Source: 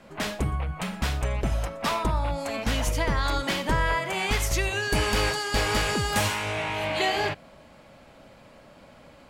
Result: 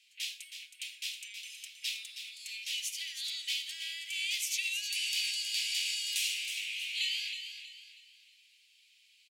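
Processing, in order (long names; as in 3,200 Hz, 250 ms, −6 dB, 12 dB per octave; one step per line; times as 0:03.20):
Butterworth high-pass 2,500 Hz 48 dB per octave
high-shelf EQ 4,800 Hz −4.5 dB
repeating echo 319 ms, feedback 37%, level −9 dB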